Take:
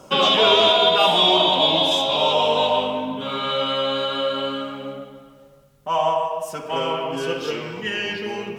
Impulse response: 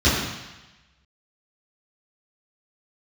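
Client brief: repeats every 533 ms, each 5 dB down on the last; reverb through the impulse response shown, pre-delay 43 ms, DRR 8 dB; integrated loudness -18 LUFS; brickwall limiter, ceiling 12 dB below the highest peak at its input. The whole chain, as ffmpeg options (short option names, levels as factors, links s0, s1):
-filter_complex "[0:a]alimiter=limit=0.168:level=0:latency=1,aecho=1:1:533|1066|1599|2132|2665|3198|3731:0.562|0.315|0.176|0.0988|0.0553|0.031|0.0173,asplit=2[s0][s1];[1:a]atrim=start_sample=2205,adelay=43[s2];[s1][s2]afir=irnorm=-1:irlink=0,volume=0.0398[s3];[s0][s3]amix=inputs=2:normalize=0,volume=1.68"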